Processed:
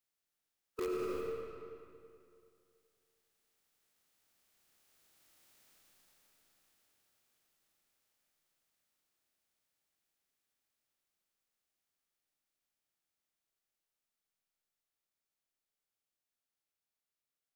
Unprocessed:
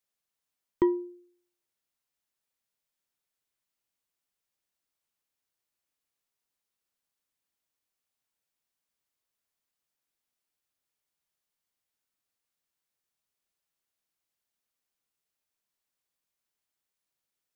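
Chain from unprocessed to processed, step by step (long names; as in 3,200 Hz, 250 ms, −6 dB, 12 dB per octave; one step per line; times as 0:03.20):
ceiling on every frequency bin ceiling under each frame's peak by 18 dB
source passing by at 0:05.57, 11 m/s, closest 5.9 metres
formants moved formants +4 semitones
notch filter 1,000 Hz, Q 12
in parallel at −7.5 dB: wrap-around overflow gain 41.5 dB
on the sum: feedback echo with a low-pass in the loop 90 ms, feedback 57%, level −9.5 dB
comb and all-pass reverb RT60 2.5 s, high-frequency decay 0.75×, pre-delay 50 ms, DRR 4 dB
brickwall limiter −45.5 dBFS, peak gain reduction 16.5 dB
level +16 dB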